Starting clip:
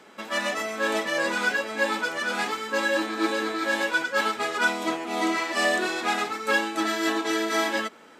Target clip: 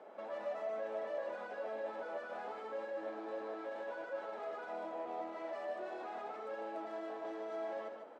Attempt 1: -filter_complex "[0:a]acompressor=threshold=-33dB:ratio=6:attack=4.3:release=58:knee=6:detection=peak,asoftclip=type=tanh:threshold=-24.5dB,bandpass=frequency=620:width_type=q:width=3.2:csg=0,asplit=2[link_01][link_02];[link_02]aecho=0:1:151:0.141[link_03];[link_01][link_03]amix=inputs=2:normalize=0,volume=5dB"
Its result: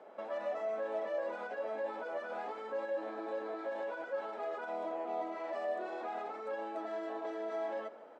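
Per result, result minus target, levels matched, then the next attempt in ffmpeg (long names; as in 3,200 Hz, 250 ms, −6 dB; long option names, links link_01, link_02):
soft clipping: distortion −15 dB; echo-to-direct −11 dB
-filter_complex "[0:a]acompressor=threshold=-33dB:ratio=6:attack=4.3:release=58:knee=6:detection=peak,asoftclip=type=tanh:threshold=-36.5dB,bandpass=frequency=620:width_type=q:width=3.2:csg=0,asplit=2[link_01][link_02];[link_02]aecho=0:1:151:0.141[link_03];[link_01][link_03]amix=inputs=2:normalize=0,volume=5dB"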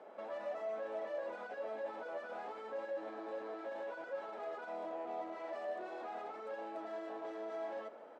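echo-to-direct −11 dB
-filter_complex "[0:a]acompressor=threshold=-33dB:ratio=6:attack=4.3:release=58:knee=6:detection=peak,asoftclip=type=tanh:threshold=-36.5dB,bandpass=frequency=620:width_type=q:width=3.2:csg=0,asplit=2[link_01][link_02];[link_02]aecho=0:1:151:0.501[link_03];[link_01][link_03]amix=inputs=2:normalize=0,volume=5dB"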